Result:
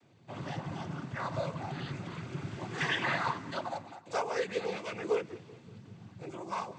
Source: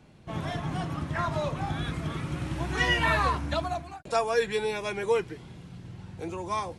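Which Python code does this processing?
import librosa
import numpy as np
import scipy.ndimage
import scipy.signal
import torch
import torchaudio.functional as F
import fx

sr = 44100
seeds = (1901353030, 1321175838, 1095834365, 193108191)

p1 = fx.noise_vocoder(x, sr, seeds[0], bands=16)
p2 = p1 + fx.echo_feedback(p1, sr, ms=191, feedback_pct=56, wet_db=-20.5, dry=0)
y = F.gain(torch.from_numpy(p2), -6.0).numpy()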